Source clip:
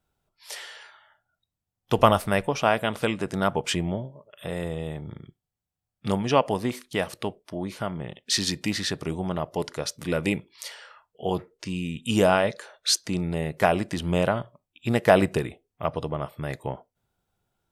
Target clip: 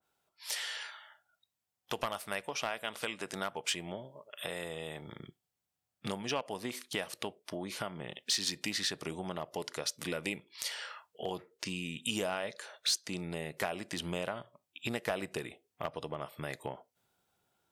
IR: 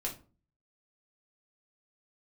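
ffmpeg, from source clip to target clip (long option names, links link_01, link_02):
-af "asetnsamples=nb_out_samples=441:pad=0,asendcmd='5.2 highpass f 290',highpass=frequency=630:poles=1,acompressor=threshold=-40dB:ratio=3,aeval=exprs='clip(val(0),-1,0.0282)':channel_layout=same,adynamicequalizer=threshold=0.002:dfrequency=1800:dqfactor=0.7:tfrequency=1800:tqfactor=0.7:attack=5:release=100:ratio=0.375:range=2.5:mode=boostabove:tftype=highshelf,volume=2dB"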